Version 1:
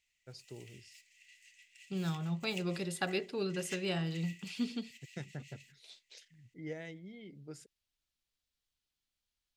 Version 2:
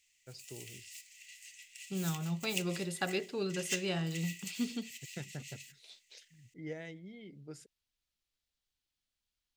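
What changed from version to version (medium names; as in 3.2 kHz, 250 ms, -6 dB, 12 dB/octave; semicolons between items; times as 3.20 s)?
background: add tilt EQ +4.5 dB/octave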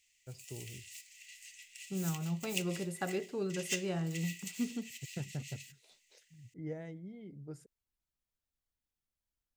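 first voice: remove frequency weighting D; second voice: add peaking EQ 3.8 kHz -12 dB 1.9 oct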